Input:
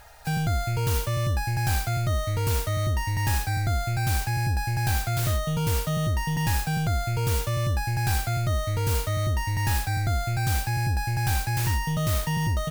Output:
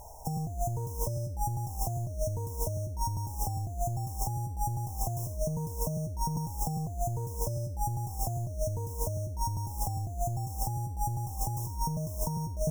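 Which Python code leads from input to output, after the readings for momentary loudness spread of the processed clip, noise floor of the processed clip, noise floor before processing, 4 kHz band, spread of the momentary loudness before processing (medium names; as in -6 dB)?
1 LU, -38 dBFS, -32 dBFS, -15.5 dB, 1 LU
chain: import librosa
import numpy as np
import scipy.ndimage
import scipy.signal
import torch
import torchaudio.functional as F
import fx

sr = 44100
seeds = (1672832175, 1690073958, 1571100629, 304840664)

y = fx.brickwall_bandstop(x, sr, low_hz=1100.0, high_hz=5200.0)
y = fx.over_compress(y, sr, threshold_db=-29.0, ratio=-0.5)
y = F.gain(torch.from_numpy(y), -2.0).numpy()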